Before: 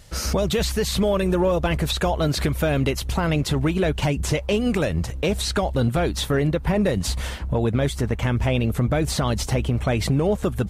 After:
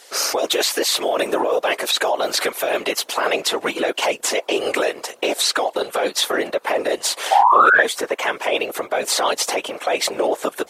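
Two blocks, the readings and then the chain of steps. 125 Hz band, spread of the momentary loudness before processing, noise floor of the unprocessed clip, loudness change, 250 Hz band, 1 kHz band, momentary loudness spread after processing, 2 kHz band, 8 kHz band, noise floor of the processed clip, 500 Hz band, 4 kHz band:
under -25 dB, 3 LU, -32 dBFS, +3.5 dB, -7.5 dB, +11.0 dB, 7 LU, +9.5 dB, +8.0 dB, -46 dBFS, +3.0 dB, +7.5 dB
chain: steep high-pass 430 Hz 36 dB/octave; in parallel at +2 dB: compressor with a negative ratio -26 dBFS, ratio -0.5; on the sum: painted sound rise, 7.31–7.83 s, 730–1800 Hz -12 dBFS; whisper effect

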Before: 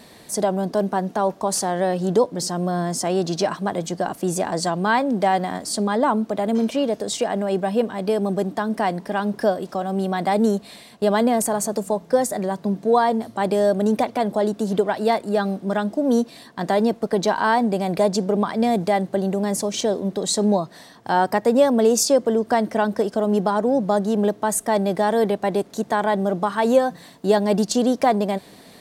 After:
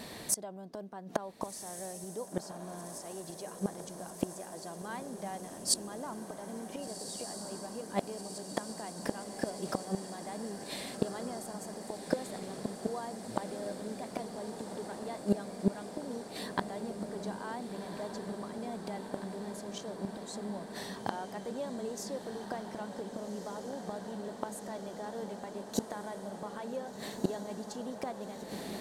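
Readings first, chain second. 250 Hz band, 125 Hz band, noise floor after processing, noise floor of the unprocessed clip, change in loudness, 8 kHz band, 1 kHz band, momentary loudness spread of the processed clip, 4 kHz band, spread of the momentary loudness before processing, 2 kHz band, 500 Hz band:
-17.0 dB, -15.5 dB, -46 dBFS, -47 dBFS, -17.5 dB, -11.5 dB, -19.5 dB, 7 LU, -13.0 dB, 6 LU, -17.5 dB, -19.5 dB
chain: inverted gate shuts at -16 dBFS, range -24 dB; echo that smears into a reverb 1520 ms, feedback 80%, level -8.5 dB; trim +1 dB

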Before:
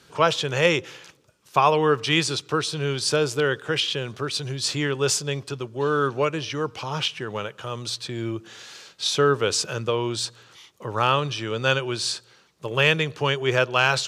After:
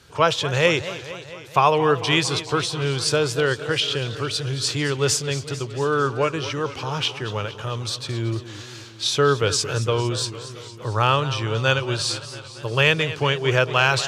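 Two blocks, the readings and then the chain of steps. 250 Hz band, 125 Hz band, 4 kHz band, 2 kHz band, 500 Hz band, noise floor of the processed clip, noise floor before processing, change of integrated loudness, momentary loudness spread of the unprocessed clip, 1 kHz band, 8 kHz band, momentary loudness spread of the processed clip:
+1.0 dB, +4.5 dB, +2.0 dB, +1.5 dB, +1.5 dB, -39 dBFS, -56 dBFS, +2.0 dB, 12 LU, +1.5 dB, +2.0 dB, 11 LU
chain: resonant low shelf 130 Hz +7.5 dB, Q 1.5; modulated delay 226 ms, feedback 67%, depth 159 cents, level -14 dB; trim +1.5 dB

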